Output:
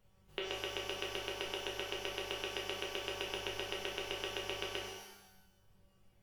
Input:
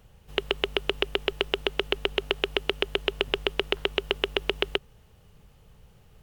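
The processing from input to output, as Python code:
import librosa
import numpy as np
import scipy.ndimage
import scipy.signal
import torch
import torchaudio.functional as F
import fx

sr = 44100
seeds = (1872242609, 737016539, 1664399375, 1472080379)

y = fx.comb_fb(x, sr, f0_hz=190.0, decay_s=0.87, harmonics='all', damping=0.0, mix_pct=90)
y = fx.dereverb_blind(y, sr, rt60_s=1.1)
y = fx.rev_shimmer(y, sr, seeds[0], rt60_s=1.0, semitones=12, shimmer_db=-8, drr_db=-1.5)
y = y * 10.0 ** (1.5 / 20.0)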